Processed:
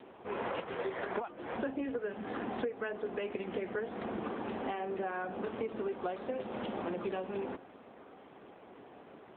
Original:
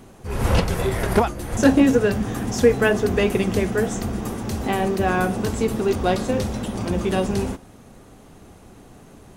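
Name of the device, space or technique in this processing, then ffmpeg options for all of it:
voicemail: -af "highpass=360,lowpass=3.1k,acompressor=threshold=-31dB:ratio=12,volume=-1.5dB" -ar 8000 -c:a libopencore_amrnb -b:a 7950

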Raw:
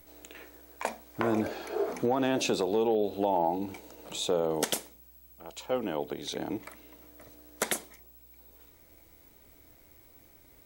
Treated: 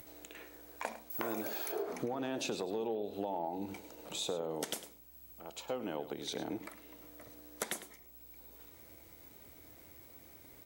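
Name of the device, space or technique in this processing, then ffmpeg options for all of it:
upward and downward compression: -filter_complex "[0:a]asettb=1/sr,asplit=3[a][b][c];[a]atrim=end=1.104[d];[b]atrim=start=1.1:end=1.72,asetpts=PTS-STARTPTS,afade=t=in:d=0.004:c=qsin,afade=t=out:st=0.616:d=0.004:c=qsin,aemphasis=mode=production:type=bsi[e];[c]atrim=start=1.716[f];[d][e]acrossfade=d=0.004:c1=hsin:c2=qsin[g];[g][f]acrossfade=d=0.004:c1=qsin:c2=hsin,acompressor=mode=upward:threshold=-45dB:ratio=2.5,acompressor=threshold=-31dB:ratio=5,highpass=65,aecho=1:1:104:0.2,volume=-3dB"

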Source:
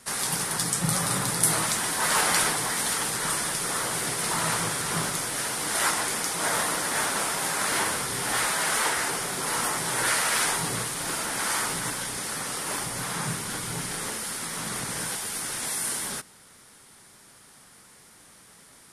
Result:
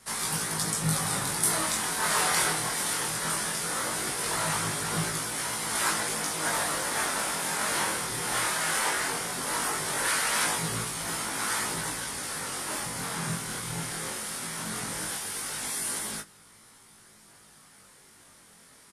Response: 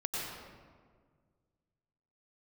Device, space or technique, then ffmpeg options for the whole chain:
double-tracked vocal: -filter_complex "[0:a]asplit=2[a][b];[b]adelay=19,volume=-7.5dB[c];[a][c]amix=inputs=2:normalize=0,flanger=delay=18:depth=6.7:speed=0.18"

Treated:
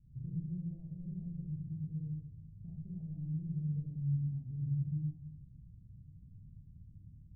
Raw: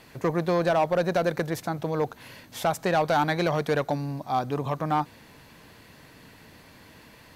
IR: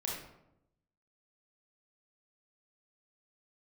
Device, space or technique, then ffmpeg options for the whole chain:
club heard from the street: -filter_complex "[0:a]alimiter=limit=-22.5dB:level=0:latency=1:release=228,lowpass=f=130:w=0.5412,lowpass=f=130:w=1.3066[a];[1:a]atrim=start_sample=2205[b];[a][b]afir=irnorm=-1:irlink=0,volume=2.5dB"

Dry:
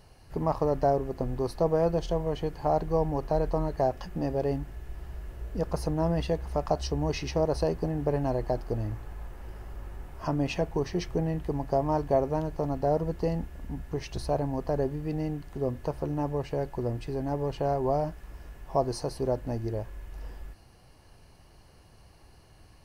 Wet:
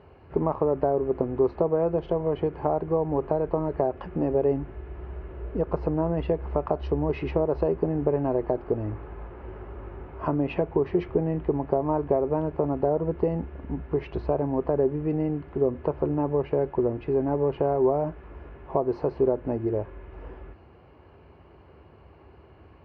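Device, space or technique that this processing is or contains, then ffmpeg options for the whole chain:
bass amplifier: -af "acompressor=threshold=-28dB:ratio=4,highpass=f=62:w=0.5412,highpass=f=62:w=1.3066,equalizer=f=120:t=q:w=4:g=-8,equalizer=f=190:t=q:w=4:g=-4,equalizer=f=390:t=q:w=4:g=6,equalizer=f=750:t=q:w=4:g=-3,equalizer=f=1.8k:t=q:w=4:g=-7,lowpass=f=2.3k:w=0.5412,lowpass=f=2.3k:w=1.3066,volume=7dB"

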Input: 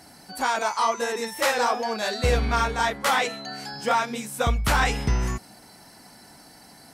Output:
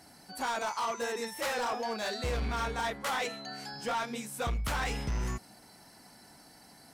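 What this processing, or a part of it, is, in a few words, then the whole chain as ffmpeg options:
limiter into clipper: -af "alimiter=limit=-15.5dB:level=0:latency=1:release=13,asoftclip=type=hard:threshold=-21.5dB,volume=-6.5dB"

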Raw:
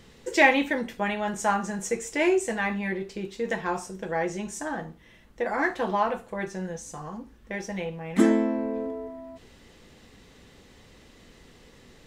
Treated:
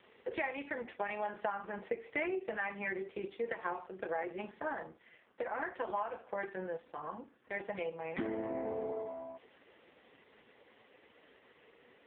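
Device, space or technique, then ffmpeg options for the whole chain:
voicemail: -af "highpass=410,lowpass=3.1k,acompressor=threshold=-32dB:ratio=8" -ar 8000 -c:a libopencore_amrnb -b:a 4750

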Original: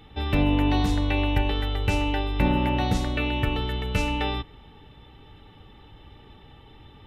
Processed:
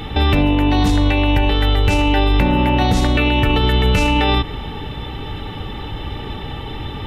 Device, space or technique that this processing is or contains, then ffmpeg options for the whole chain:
loud club master: -af "acompressor=threshold=-27dB:ratio=2.5,asoftclip=type=hard:threshold=-19dB,alimiter=level_in=27.5dB:limit=-1dB:release=50:level=0:latency=1,volume=-6dB"

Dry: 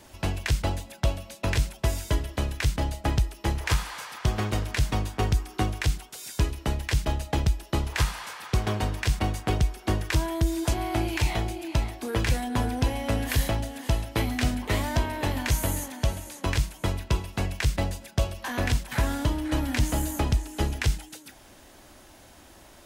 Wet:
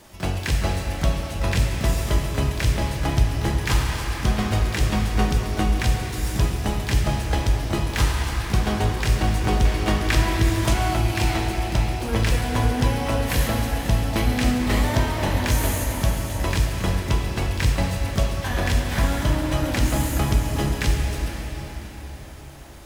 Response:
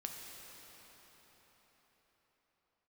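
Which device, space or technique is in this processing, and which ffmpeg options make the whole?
shimmer-style reverb: -filter_complex "[0:a]asplit=2[a][b];[b]asetrate=88200,aresample=44100,atempo=0.5,volume=-11dB[c];[a][c]amix=inputs=2:normalize=0[d];[1:a]atrim=start_sample=2205[e];[d][e]afir=irnorm=-1:irlink=0,asettb=1/sr,asplit=3[f][g][h];[f]atrim=end=9.654[i];[g]atrim=start=9.65:end=10.94,asetpts=PTS-STARTPTS,afade=t=in:d=0.004:c=qsin,afade=t=out:st=1.286:d=0.004:c=qsin,equalizer=f=2.2k:w=0.44:g=4.5[j];[h]atrim=start=10.936[k];[i][j]acrossfade=d=0.004:c1=hsin:c2=qsin[l];[l][k]acrossfade=d=0.004:c1=qsin:c2=hsin,volume=5.5dB"

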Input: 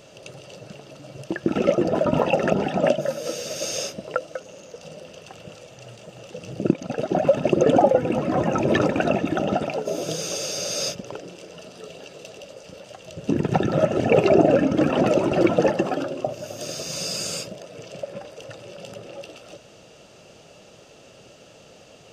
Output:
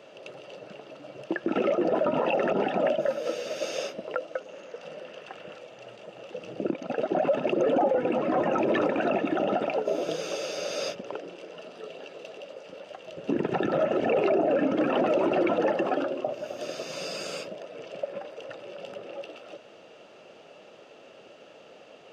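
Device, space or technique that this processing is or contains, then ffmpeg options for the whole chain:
DJ mixer with the lows and highs turned down: -filter_complex "[0:a]acrossover=split=230 3500:gain=0.112 1 0.158[a][b][c];[a][b][c]amix=inputs=3:normalize=0,alimiter=limit=-16dB:level=0:latency=1:release=29,asettb=1/sr,asplit=3[d][e][f];[d]atrim=end=4.524[g];[e]atrim=start=4.52:end=5.58,asetpts=PTS-STARTPTS,afade=t=in:d=0.004:c=qsin,afade=t=out:st=1.056:d=0.004:c=qsin,equalizer=f=1.7k:t=o:w=0.91:g=5.5[h];[f]atrim=start=5.576[i];[g][h]acrossfade=d=0.004:c1=hsin:c2=qsin[j];[j][i]acrossfade=d=0.004:c1=qsin:c2=hsin"

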